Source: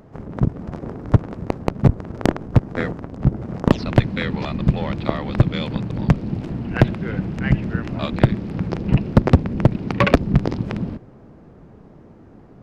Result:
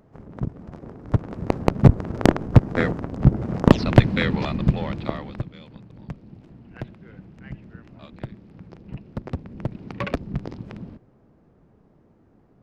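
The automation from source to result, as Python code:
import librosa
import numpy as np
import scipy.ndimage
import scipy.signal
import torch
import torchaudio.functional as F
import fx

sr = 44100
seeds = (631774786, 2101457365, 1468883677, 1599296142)

y = fx.gain(x, sr, db=fx.line((1.0, -9.0), (1.56, 2.0), (4.23, 2.0), (5.19, -6.5), (5.53, -19.5), (9.06, -19.5), (9.81, -12.0)))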